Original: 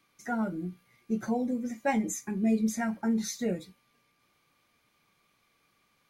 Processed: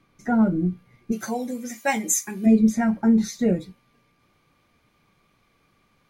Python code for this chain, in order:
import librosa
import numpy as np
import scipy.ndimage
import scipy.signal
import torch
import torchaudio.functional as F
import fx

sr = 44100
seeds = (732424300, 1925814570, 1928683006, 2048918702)

y = fx.tilt_eq(x, sr, slope=fx.steps((0.0, -3.0), (1.11, 3.0), (2.45, -2.0)))
y = F.gain(torch.from_numpy(y), 6.0).numpy()